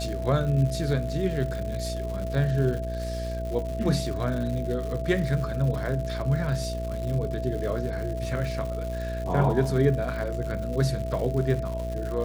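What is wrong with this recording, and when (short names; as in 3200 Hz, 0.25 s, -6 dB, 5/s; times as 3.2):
buzz 60 Hz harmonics 10 -32 dBFS
crackle 200/s -33 dBFS
tone 660 Hz -33 dBFS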